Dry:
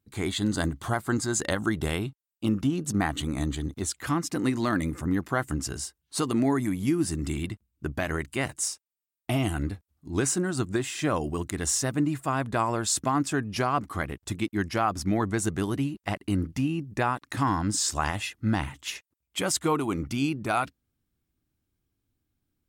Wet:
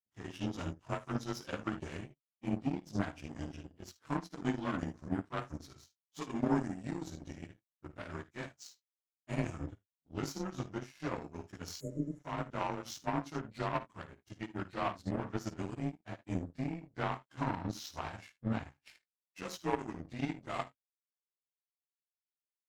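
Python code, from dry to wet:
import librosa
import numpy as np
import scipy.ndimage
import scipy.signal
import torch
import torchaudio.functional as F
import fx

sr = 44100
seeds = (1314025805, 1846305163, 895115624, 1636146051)

y = fx.partial_stretch(x, sr, pct=92)
y = fx.high_shelf(y, sr, hz=7700.0, db=-11.0)
y = fx.room_early_taps(y, sr, ms=(54, 76), db=(-8.5, -12.0))
y = fx.power_curve(y, sr, exponent=2.0)
y = fx.spec_repair(y, sr, seeds[0], start_s=11.83, length_s=0.34, low_hz=630.0, high_hz=6600.0, source='after')
y = y * 10.0 ** (-2.0 / 20.0)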